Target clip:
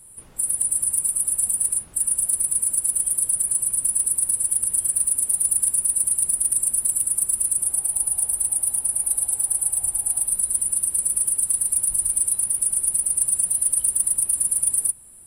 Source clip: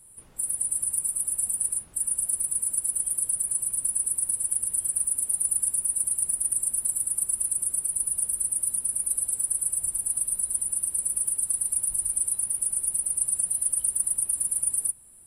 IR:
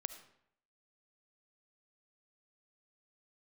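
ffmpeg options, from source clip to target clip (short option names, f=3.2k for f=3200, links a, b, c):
-filter_complex "[0:a]asoftclip=type=hard:threshold=-17dB,asettb=1/sr,asplit=3[a][b][c];[a]atrim=end=7.624[d];[b]atrim=start=7.62:end=10.29,asetpts=PTS-STARTPTS,afade=t=in:d=0.004:c=qsin,afade=t=out:st=2.666:d=0.004:c=qsin,equalizer=f=200:t=o:w=0.33:g=-8,equalizer=f=800:t=o:w=0.33:g=11,equalizer=f=6.3k:t=o:w=0.33:g=-10[e];[c]atrim=start=10.286[f];[d][e]acrossfade=d=0.004:c1=hsin:c2=qsin[g];[g][f]acrossfade=d=0.004:c1=qsin:c2=hsin,volume=5.5dB"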